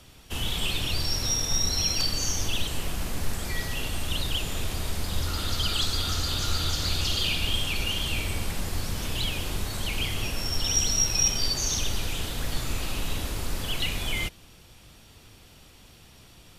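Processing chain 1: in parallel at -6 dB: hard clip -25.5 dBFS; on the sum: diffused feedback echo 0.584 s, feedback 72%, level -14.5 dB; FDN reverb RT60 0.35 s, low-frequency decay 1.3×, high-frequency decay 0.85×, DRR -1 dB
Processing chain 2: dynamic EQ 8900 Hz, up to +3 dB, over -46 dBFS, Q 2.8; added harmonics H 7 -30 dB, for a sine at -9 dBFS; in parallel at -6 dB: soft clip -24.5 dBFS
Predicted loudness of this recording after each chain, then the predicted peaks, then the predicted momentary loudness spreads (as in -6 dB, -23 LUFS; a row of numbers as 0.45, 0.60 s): -21.5, -26.0 LUFS; -7.0, -9.5 dBFS; 16, 8 LU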